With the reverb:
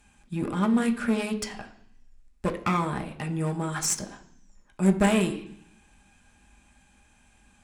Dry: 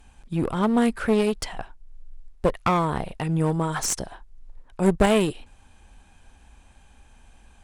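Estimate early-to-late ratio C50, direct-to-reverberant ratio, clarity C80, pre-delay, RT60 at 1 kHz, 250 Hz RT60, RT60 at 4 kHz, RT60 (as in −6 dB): 13.0 dB, 4.0 dB, 16.5 dB, 3 ms, 0.70 s, 0.95 s, 0.90 s, 0.65 s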